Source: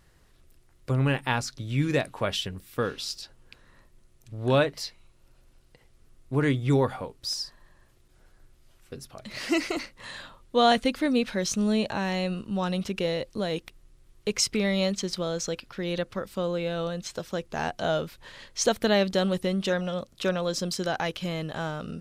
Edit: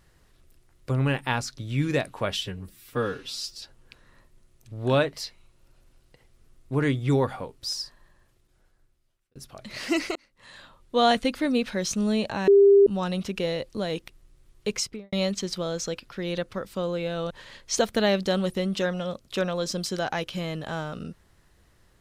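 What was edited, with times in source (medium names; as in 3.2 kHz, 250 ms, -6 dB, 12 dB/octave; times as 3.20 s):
2.43–3.22 s: stretch 1.5×
7.41–8.96 s: fade out
9.76–10.63 s: fade in
12.08–12.47 s: bleep 399 Hz -11.5 dBFS
14.31–14.73 s: studio fade out
16.91–18.18 s: delete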